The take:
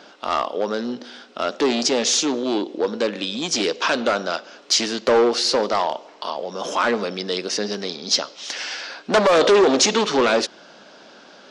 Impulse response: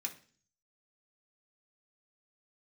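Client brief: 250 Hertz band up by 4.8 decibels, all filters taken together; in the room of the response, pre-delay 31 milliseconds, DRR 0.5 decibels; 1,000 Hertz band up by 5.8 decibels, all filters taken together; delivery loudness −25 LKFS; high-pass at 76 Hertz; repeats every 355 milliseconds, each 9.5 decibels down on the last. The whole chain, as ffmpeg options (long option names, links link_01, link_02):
-filter_complex "[0:a]highpass=76,equalizer=frequency=250:width_type=o:gain=5.5,equalizer=frequency=1000:width_type=o:gain=7,aecho=1:1:355|710|1065|1420:0.335|0.111|0.0365|0.012,asplit=2[link_01][link_02];[1:a]atrim=start_sample=2205,adelay=31[link_03];[link_02][link_03]afir=irnorm=-1:irlink=0,volume=0dB[link_04];[link_01][link_04]amix=inputs=2:normalize=0,volume=-9.5dB"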